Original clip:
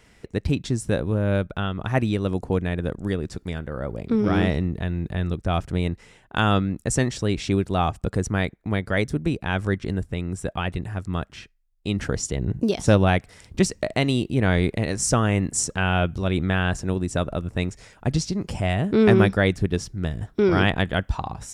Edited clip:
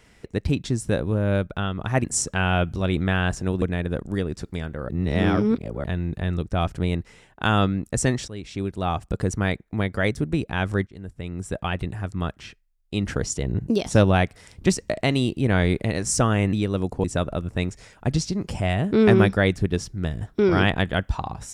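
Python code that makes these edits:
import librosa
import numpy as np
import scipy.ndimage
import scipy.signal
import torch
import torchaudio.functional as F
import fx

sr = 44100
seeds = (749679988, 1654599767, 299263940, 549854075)

y = fx.edit(x, sr, fx.swap(start_s=2.04, length_s=0.51, other_s=15.46, other_length_s=1.58),
    fx.reverse_span(start_s=3.82, length_s=0.95),
    fx.fade_in_from(start_s=7.21, length_s=0.93, floor_db=-15.0),
    fx.fade_in_from(start_s=9.8, length_s=0.7, floor_db=-23.5), tone=tone)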